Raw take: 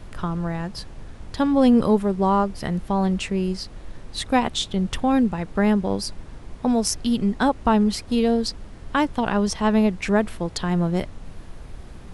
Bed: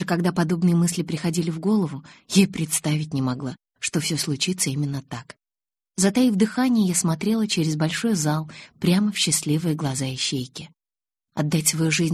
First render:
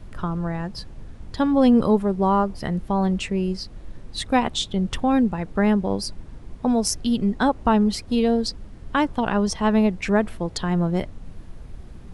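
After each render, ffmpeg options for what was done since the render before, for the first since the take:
ffmpeg -i in.wav -af "afftdn=noise_reduction=6:noise_floor=-41" out.wav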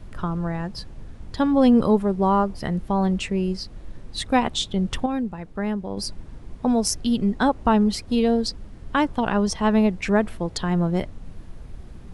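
ffmpeg -i in.wav -filter_complex "[0:a]asplit=3[link_01][link_02][link_03];[link_01]atrim=end=5.062[link_04];[link_02]atrim=start=5.058:end=5.972,asetpts=PTS-STARTPTS,volume=-7dB[link_05];[link_03]atrim=start=5.968[link_06];[link_04][link_05]acrossfade=duration=0.004:curve1=hsin:curve2=hsin[link_07];[link_07][link_06]acrossfade=duration=0.004:curve1=hsin:curve2=hsin" out.wav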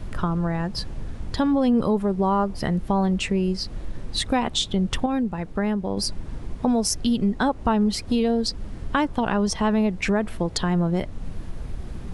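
ffmpeg -i in.wav -filter_complex "[0:a]asplit=2[link_01][link_02];[link_02]alimiter=limit=-13.5dB:level=0:latency=1:release=16,volume=2dB[link_03];[link_01][link_03]amix=inputs=2:normalize=0,acompressor=threshold=-24dB:ratio=2" out.wav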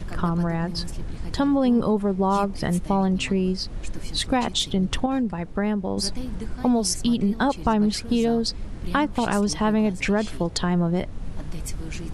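ffmpeg -i in.wav -i bed.wav -filter_complex "[1:a]volume=-16.5dB[link_01];[0:a][link_01]amix=inputs=2:normalize=0" out.wav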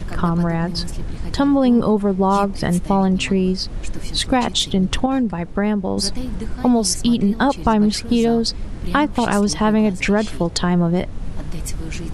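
ffmpeg -i in.wav -af "volume=5dB" out.wav

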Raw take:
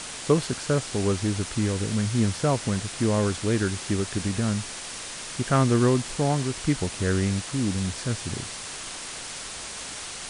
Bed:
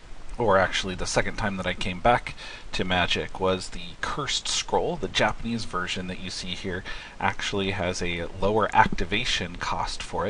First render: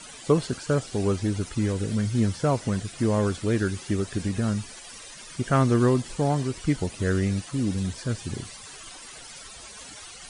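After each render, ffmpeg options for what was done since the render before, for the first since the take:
ffmpeg -i in.wav -af "afftdn=noise_reduction=14:noise_floor=-37" out.wav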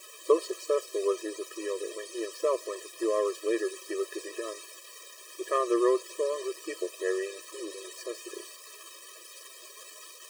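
ffmpeg -i in.wav -af "aeval=exprs='val(0)*gte(abs(val(0)),0.00891)':channel_layout=same,afftfilt=real='re*eq(mod(floor(b*sr/1024/330),2),1)':imag='im*eq(mod(floor(b*sr/1024/330),2),1)':win_size=1024:overlap=0.75" out.wav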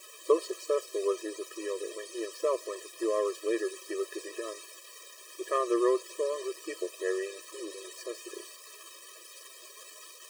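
ffmpeg -i in.wav -af "volume=-1.5dB" out.wav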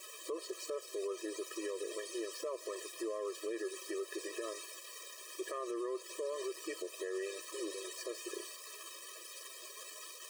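ffmpeg -i in.wav -af "acompressor=threshold=-34dB:ratio=2,alimiter=level_in=7dB:limit=-24dB:level=0:latency=1:release=72,volume=-7dB" out.wav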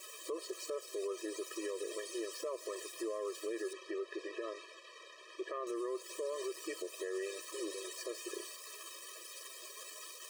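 ffmpeg -i in.wav -filter_complex "[0:a]asettb=1/sr,asplit=3[link_01][link_02][link_03];[link_01]atrim=end=3.734[link_04];[link_02]atrim=start=3.73:end=5.67,asetpts=PTS-STARTPTS,afade=type=in:duration=0.004:curve=qsin,afade=type=out:start_time=1.936:duration=0.004:curve=qsin,highpass=140,lowpass=3300[link_05];[link_03]atrim=start=5.666[link_06];[link_04][link_05]acrossfade=duration=0.004:curve1=hsin:curve2=qsin[link_07];[link_07][link_06]acrossfade=duration=0.004:curve1=qsin:curve2=hsin" out.wav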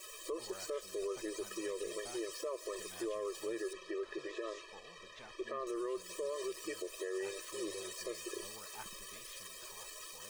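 ffmpeg -i in.wav -i bed.wav -filter_complex "[1:a]volume=-33dB[link_01];[0:a][link_01]amix=inputs=2:normalize=0" out.wav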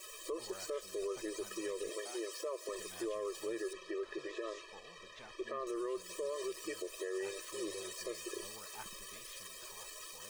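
ffmpeg -i in.wav -filter_complex "[0:a]asettb=1/sr,asplit=3[link_01][link_02][link_03];[link_01]atrim=end=1.894[link_04];[link_02]atrim=start=1.89:end=2.69,asetpts=PTS-STARTPTS,afade=type=in:duration=0.004:curve=qsin,afade=type=out:start_time=0.796:duration=0.004:curve=qsin,highpass=frequency=300:width=0.5412,highpass=frequency=300:width=1.3066[link_05];[link_03]atrim=start=2.686[link_06];[link_04][link_05]acrossfade=duration=0.004:curve1=hsin:curve2=qsin[link_07];[link_07][link_06]acrossfade=duration=0.004:curve1=qsin:curve2=hsin" out.wav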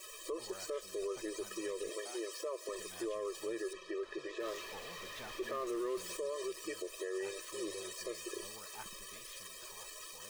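ffmpeg -i in.wav -filter_complex "[0:a]asettb=1/sr,asplit=3[link_01][link_02][link_03];[link_01]atrim=end=4.404[link_04];[link_02]atrim=start=4.4:end=6.17,asetpts=PTS-STARTPTS,afade=type=in:duration=0.004:curve=qsin,afade=type=out:start_time=1.766:duration=0.004:curve=qsin,aeval=exprs='val(0)+0.5*0.00562*sgn(val(0))':channel_layout=same[link_05];[link_03]atrim=start=6.166[link_06];[link_04][link_05]acrossfade=duration=0.004:curve1=hsin:curve2=qsin[link_07];[link_07][link_06]acrossfade=duration=0.004:curve1=qsin:curve2=hsin" out.wav

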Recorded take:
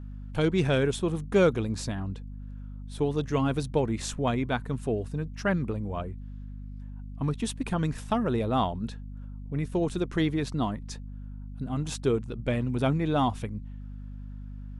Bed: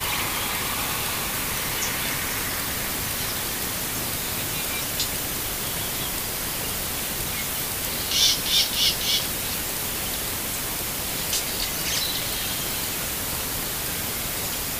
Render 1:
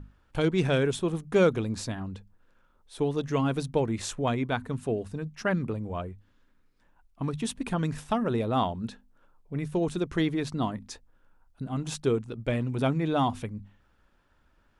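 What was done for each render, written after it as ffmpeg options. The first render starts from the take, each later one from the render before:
ffmpeg -i in.wav -af "bandreject=frequency=50:width_type=h:width=6,bandreject=frequency=100:width_type=h:width=6,bandreject=frequency=150:width_type=h:width=6,bandreject=frequency=200:width_type=h:width=6,bandreject=frequency=250:width_type=h:width=6" out.wav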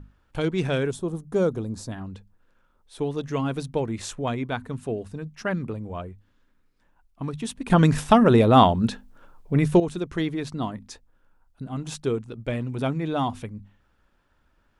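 ffmpeg -i in.wav -filter_complex "[0:a]asettb=1/sr,asplit=3[link_01][link_02][link_03];[link_01]atrim=end=0.914[link_04];[link_02]atrim=start=0.91:end=1.92,asetpts=PTS-STARTPTS,afade=type=in:duration=0.004:curve=qsin,afade=type=out:start_time=1.006:duration=0.004:curve=qsin,equalizer=frequency=2400:width_type=o:width=1.5:gain=-13.5[link_05];[link_03]atrim=start=1.916[link_06];[link_04][link_05]acrossfade=duration=0.004:curve1=hsin:curve2=qsin[link_07];[link_07][link_06]acrossfade=duration=0.004:curve1=qsin:curve2=hsin,asplit=3[link_08][link_09][link_10];[link_08]atrim=end=7.702[link_11];[link_09]atrim=start=7.698:end=9.802,asetpts=PTS-STARTPTS,volume=11.5dB[link_12];[link_10]atrim=start=9.798[link_13];[link_11][link_12]acrossfade=duration=0.004:curve1=hsin:curve2=hsin[link_14];[link_14][link_13]acrossfade=duration=0.004:curve1=hsin:curve2=hsin" out.wav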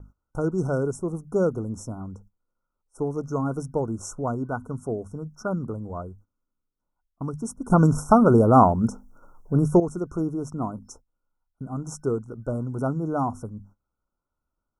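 ffmpeg -i in.wav -af "afftfilt=real='re*(1-between(b*sr/4096,1500,5300))':imag='im*(1-between(b*sr/4096,1500,5300))':win_size=4096:overlap=0.75,agate=range=-17dB:threshold=-50dB:ratio=16:detection=peak" out.wav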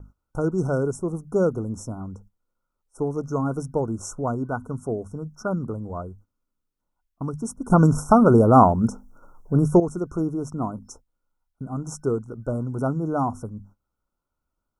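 ffmpeg -i in.wav -af "volume=1.5dB,alimiter=limit=-3dB:level=0:latency=1" out.wav

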